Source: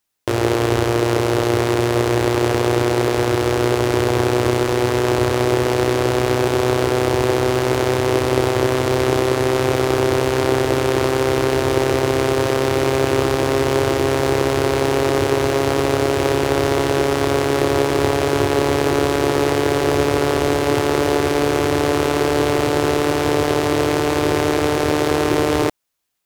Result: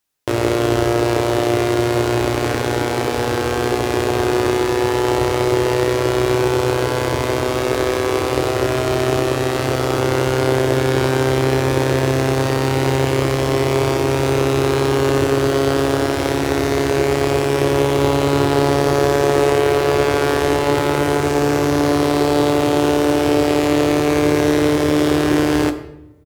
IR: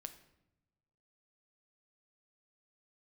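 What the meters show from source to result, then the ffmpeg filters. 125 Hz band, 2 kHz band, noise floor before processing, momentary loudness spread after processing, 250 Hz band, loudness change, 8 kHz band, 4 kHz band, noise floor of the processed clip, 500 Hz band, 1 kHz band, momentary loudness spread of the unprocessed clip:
+1.5 dB, +0.5 dB, -20 dBFS, 3 LU, +2.0 dB, +0.5 dB, 0.0 dB, 0.0 dB, -21 dBFS, +0.5 dB, +0.5 dB, 1 LU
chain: -filter_complex "[0:a]asplit=2[s0][s1];[s1]adelay=14,volume=0.251[s2];[s0][s2]amix=inputs=2:normalize=0[s3];[1:a]atrim=start_sample=2205,asetrate=41895,aresample=44100[s4];[s3][s4]afir=irnorm=-1:irlink=0,volume=1.68"

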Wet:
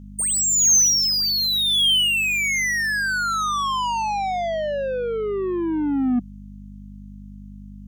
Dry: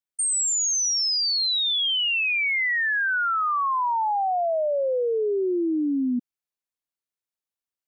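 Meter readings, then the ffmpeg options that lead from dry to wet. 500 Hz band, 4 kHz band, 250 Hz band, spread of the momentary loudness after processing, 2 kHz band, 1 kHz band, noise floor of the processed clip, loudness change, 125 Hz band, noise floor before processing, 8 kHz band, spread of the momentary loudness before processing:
-1.0 dB, +4.0 dB, +2.5 dB, 11 LU, +1.0 dB, 0.0 dB, -39 dBFS, +3.0 dB, no reading, under -85 dBFS, +6.0 dB, 4 LU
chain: -filter_complex "[0:a]asubboost=boost=5:cutoff=200,asplit=2[s0][s1];[s1]highpass=f=720:p=1,volume=6.31,asoftclip=type=tanh:threshold=0.0944[s2];[s0][s2]amix=inputs=2:normalize=0,lowpass=f=1800:p=1,volume=0.501,crystalizer=i=3:c=0,aeval=exprs='val(0)+0.01*(sin(2*PI*50*n/s)+sin(2*PI*2*50*n/s)/2+sin(2*PI*3*50*n/s)/3+sin(2*PI*4*50*n/s)/4+sin(2*PI*5*50*n/s)/5)':c=same,equalizer=f=200:t=o:w=0.33:g=11,equalizer=f=3150:t=o:w=0.33:g=6,equalizer=f=6300:t=o:w=0.33:g=9"

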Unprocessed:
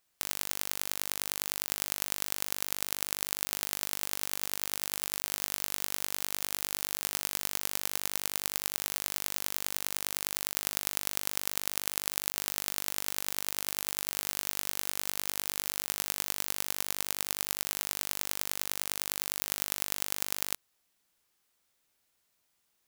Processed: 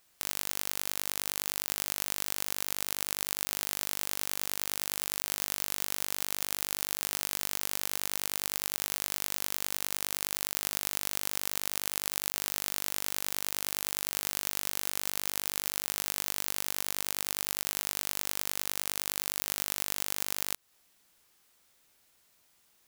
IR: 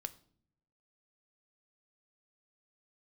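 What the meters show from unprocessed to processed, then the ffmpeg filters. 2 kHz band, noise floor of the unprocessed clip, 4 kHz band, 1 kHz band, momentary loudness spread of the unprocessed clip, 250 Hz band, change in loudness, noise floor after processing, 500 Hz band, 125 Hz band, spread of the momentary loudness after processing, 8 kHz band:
+0.5 dB, -76 dBFS, +0.5 dB, +0.5 dB, 0 LU, +0.5 dB, +0.5 dB, -67 dBFS, +0.5 dB, +0.5 dB, 0 LU, +0.5 dB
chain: -af "alimiter=limit=0.251:level=0:latency=1:release=225,volume=2.66"

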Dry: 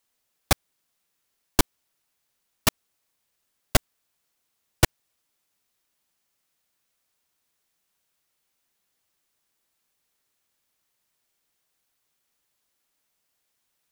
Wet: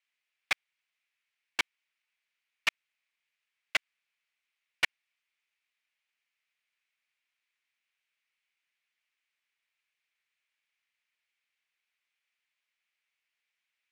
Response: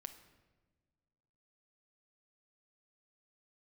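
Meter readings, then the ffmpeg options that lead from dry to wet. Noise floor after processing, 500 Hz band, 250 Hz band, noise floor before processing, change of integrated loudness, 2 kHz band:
under -85 dBFS, -18.5 dB, -24.5 dB, -77 dBFS, -7.0 dB, 0.0 dB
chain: -af "bandpass=f=2300:t=q:w=3.1:csg=0,volume=1.5"

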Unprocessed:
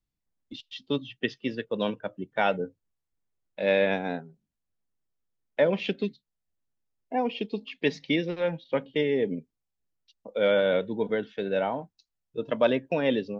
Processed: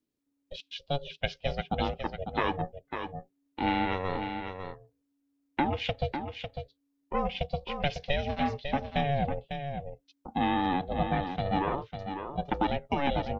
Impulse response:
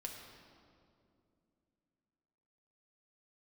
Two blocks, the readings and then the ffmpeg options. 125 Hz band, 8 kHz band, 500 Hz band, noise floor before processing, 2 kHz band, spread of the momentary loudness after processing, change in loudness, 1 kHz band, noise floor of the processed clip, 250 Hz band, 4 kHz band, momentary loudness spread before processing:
+4.5 dB, no reading, -8.0 dB, -84 dBFS, -3.5 dB, 13 LU, -4.0 dB, +5.0 dB, -78 dBFS, -2.0 dB, -1.0 dB, 13 LU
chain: -af "acompressor=threshold=0.0631:ratio=6,aeval=exprs='val(0)*sin(2*PI*280*n/s)':c=same,aecho=1:1:550:0.422,volume=1.41"

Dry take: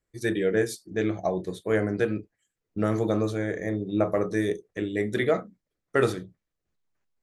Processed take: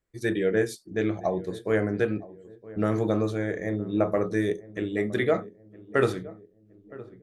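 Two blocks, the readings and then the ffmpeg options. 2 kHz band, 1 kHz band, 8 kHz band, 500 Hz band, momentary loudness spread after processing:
0.0 dB, 0.0 dB, no reading, 0.0 dB, 16 LU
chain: -filter_complex "[0:a]bass=f=250:g=0,treble=f=4000:g=-4,asplit=2[s0][s1];[s1]adelay=966,lowpass=f=850:p=1,volume=0.133,asplit=2[s2][s3];[s3]adelay=966,lowpass=f=850:p=1,volume=0.48,asplit=2[s4][s5];[s5]adelay=966,lowpass=f=850:p=1,volume=0.48,asplit=2[s6][s7];[s7]adelay=966,lowpass=f=850:p=1,volume=0.48[s8];[s2][s4][s6][s8]amix=inputs=4:normalize=0[s9];[s0][s9]amix=inputs=2:normalize=0"

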